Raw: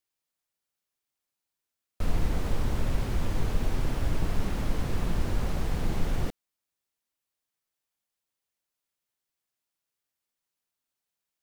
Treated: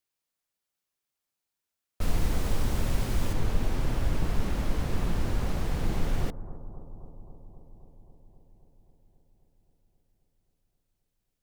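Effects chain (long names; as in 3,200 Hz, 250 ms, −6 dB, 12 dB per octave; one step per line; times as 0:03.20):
0:02.01–0:03.33: high-shelf EQ 4,300 Hz +7.5 dB
bucket-brigade delay 265 ms, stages 2,048, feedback 76%, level −15 dB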